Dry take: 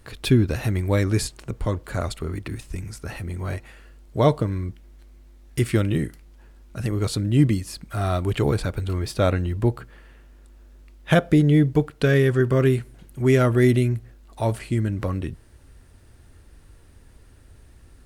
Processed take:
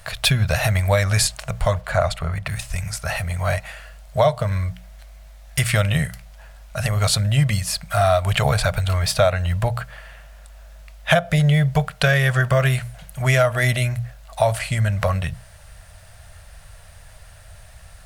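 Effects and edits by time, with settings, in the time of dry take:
1.8–2.46 high shelf 5000 Hz -> 2900 Hz -10.5 dB
whole clip: EQ curve 170 Hz 0 dB, 320 Hz -28 dB, 640 Hz +11 dB, 910 Hz +3 dB, 1600 Hz +6 dB; compressor 6:1, threshold -19 dBFS; notches 60/120/180 Hz; gain +6 dB

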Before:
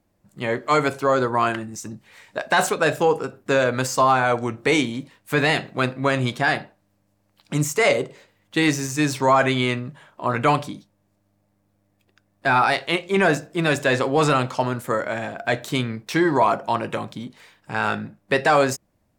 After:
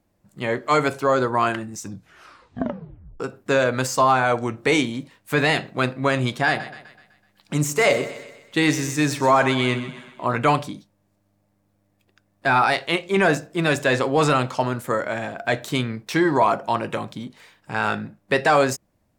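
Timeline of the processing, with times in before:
1.8 tape stop 1.40 s
6.47–10.36 split-band echo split 1000 Hz, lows 95 ms, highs 0.126 s, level -13 dB

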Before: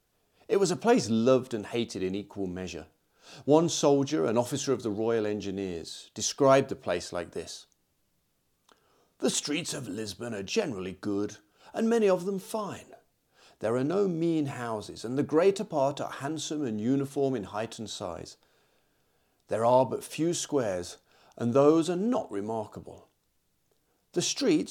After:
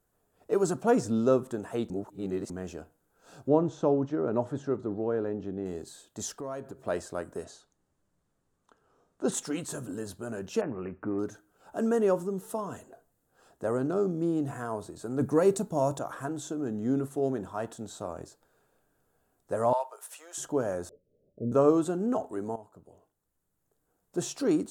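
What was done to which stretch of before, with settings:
1.9–2.5 reverse
3.48–5.66 tape spacing loss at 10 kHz 25 dB
6.35–6.87 compressor 2.5:1, threshold -40 dBFS
7.44–9.32 LPF 6700 Hz
10.61–11.19 careless resampling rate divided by 8×, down none, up filtered
12.38–14.71 notch 2300 Hz
15.21–15.99 tone controls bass +6 dB, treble +9 dB
19.73–20.38 Bessel high-pass 1000 Hz, order 6
20.89–21.52 rippled Chebyshev low-pass 590 Hz, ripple 3 dB
22.56–24.4 fade in, from -14.5 dB
whole clip: band shelf 3500 Hz -10.5 dB; gain -1 dB

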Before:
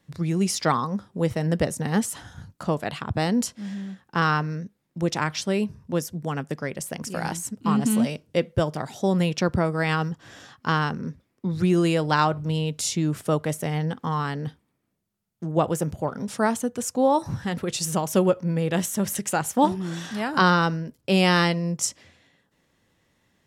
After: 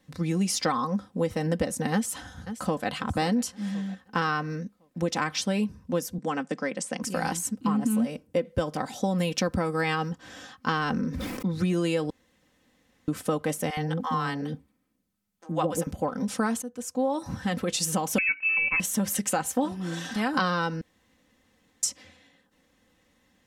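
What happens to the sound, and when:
1.93–2.89 echo throw 0.53 s, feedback 40%, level -16 dB
6.18–7.03 elliptic band-pass 180–8400 Hz
7.67–8.45 bell 4000 Hz -8.5 dB 1.6 oct
9.18–9.81 high shelf 7900 Hz +9 dB
10.68–11.47 sustainer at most 28 dB/s
12.1–13.08 room tone
13.7–15.87 bands offset in time highs, lows 70 ms, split 590 Hz
16.62–17.5 fade in, from -16.5 dB
18.18–18.8 inverted band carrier 2800 Hz
19.44–20.16 notch comb 210 Hz
20.81–21.83 room tone
whole clip: comb 3.9 ms, depth 62%; compressor, threshold -22 dBFS

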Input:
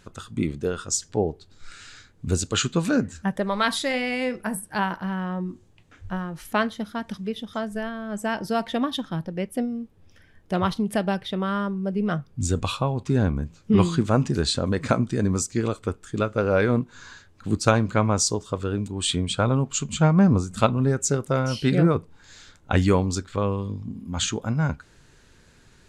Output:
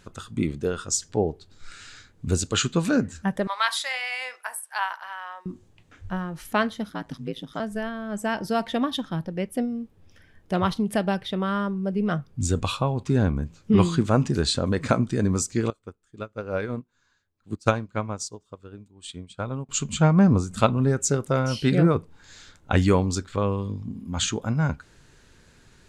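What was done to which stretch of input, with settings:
3.47–5.46 HPF 810 Hz 24 dB/oct
6.89–7.6 ring modulator 56 Hz
15.7–19.69 upward expander 2.5:1, over -30 dBFS

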